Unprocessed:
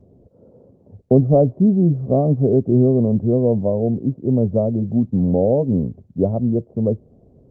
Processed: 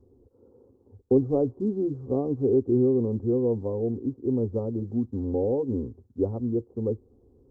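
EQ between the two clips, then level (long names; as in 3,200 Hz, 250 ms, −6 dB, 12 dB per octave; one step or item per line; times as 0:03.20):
phaser with its sweep stopped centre 630 Hz, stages 6
−4.0 dB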